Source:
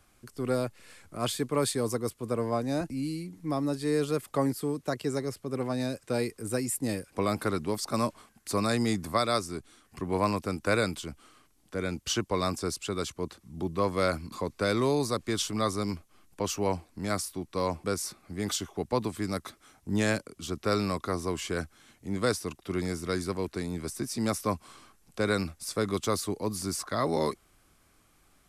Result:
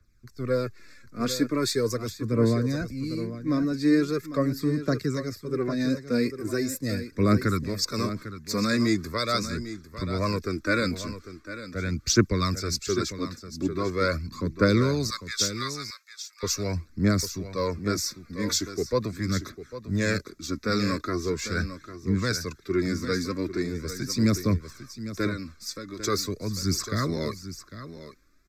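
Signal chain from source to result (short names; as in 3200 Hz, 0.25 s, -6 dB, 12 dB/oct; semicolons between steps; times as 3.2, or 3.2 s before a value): 15.1–16.43 HPF 1200 Hz 24 dB/oct; in parallel at 0 dB: limiter -22.5 dBFS, peak gain reduction 9.5 dB; 25.26–25.99 on the sum: compressor 6:1, threshold -29 dBFS, peak gain reduction 10 dB; phaser 0.41 Hz, delay 4.3 ms, feedback 53%; fixed phaser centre 3000 Hz, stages 6; on a send: echo 0.8 s -9.5 dB; on the sum: three-band expander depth 40%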